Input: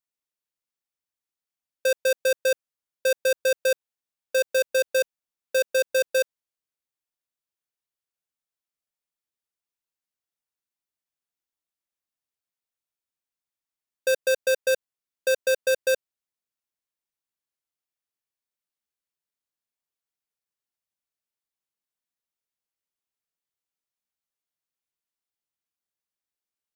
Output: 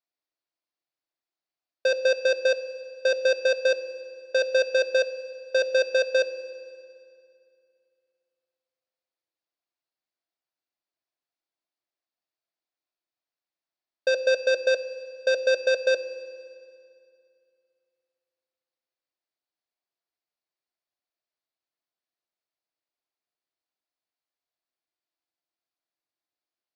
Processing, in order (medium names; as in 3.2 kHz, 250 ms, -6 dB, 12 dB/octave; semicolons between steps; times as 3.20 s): cabinet simulation 160–5000 Hz, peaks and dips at 200 Hz -8 dB, 310 Hz +4 dB, 680 Hz +8 dB, 3.1 kHz -3 dB, 4.5 kHz +4 dB; on a send: reverberation RT60 2.5 s, pre-delay 3 ms, DRR 10.5 dB